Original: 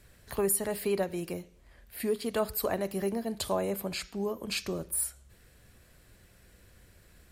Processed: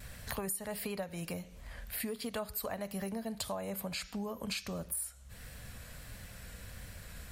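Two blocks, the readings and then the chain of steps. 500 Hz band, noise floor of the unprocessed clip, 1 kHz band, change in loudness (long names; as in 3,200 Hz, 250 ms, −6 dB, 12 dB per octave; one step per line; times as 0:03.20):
−10.0 dB, −60 dBFS, −6.0 dB, −8.0 dB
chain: parametric band 360 Hz −14 dB 0.45 octaves
downward compressor 5 to 1, threshold −48 dBFS, peak gain reduction 21 dB
pitch vibrato 1.5 Hz 32 cents
level +10.5 dB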